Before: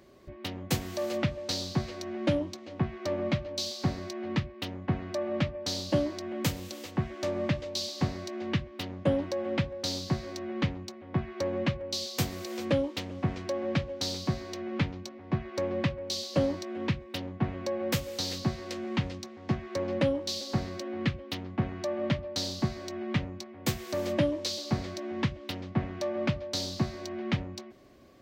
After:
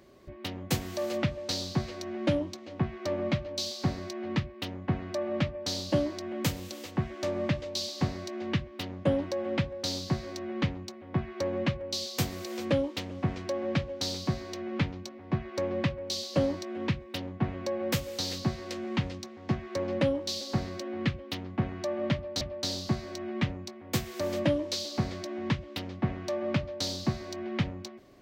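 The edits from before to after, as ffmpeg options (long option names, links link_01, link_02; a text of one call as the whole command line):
ffmpeg -i in.wav -filter_complex "[0:a]asplit=2[link_01][link_02];[link_01]atrim=end=22.412[link_03];[link_02]atrim=start=22.138[link_04];[link_03][link_04]acrossfade=duration=0.004:curve1=hsin:curve2=hsin" out.wav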